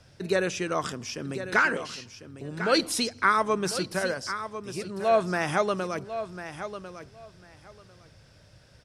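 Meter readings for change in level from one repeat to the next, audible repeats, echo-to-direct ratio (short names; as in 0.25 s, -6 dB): -15.5 dB, 2, -11.0 dB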